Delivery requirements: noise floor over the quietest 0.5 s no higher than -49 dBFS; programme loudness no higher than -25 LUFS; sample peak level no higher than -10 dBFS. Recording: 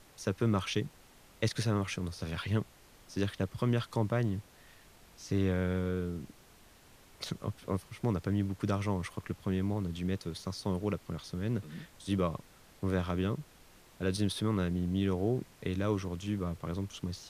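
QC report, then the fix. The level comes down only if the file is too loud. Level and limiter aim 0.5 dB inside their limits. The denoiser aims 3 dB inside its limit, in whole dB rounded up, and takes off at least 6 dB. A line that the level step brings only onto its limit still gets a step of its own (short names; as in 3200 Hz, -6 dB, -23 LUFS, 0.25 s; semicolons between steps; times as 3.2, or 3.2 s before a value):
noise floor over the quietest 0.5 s -59 dBFS: OK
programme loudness -34.5 LUFS: OK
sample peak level -16.5 dBFS: OK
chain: none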